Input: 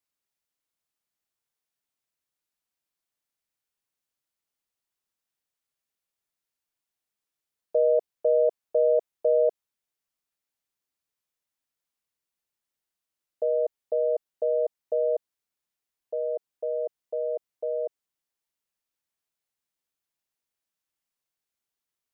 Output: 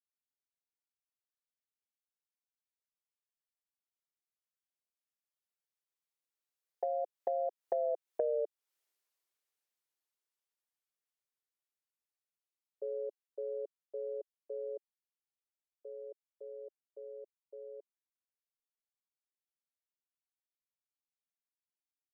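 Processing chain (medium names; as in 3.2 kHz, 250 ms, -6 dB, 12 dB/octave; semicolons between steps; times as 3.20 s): Doppler pass-by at 8.18 s, 41 m/s, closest 18 m; Chebyshev high-pass 370 Hz, order 3; compression 5:1, threshold -40 dBFS, peak gain reduction 18 dB; trim +7 dB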